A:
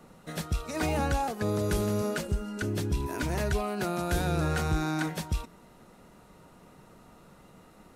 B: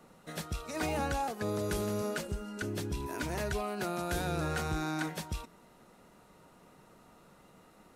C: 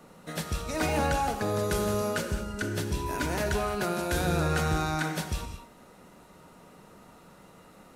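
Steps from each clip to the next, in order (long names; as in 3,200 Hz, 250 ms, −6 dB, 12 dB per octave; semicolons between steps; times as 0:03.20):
low-shelf EQ 190 Hz −6 dB; level −3 dB
reverb whose tail is shaped and stops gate 240 ms flat, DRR 5.5 dB; level +5 dB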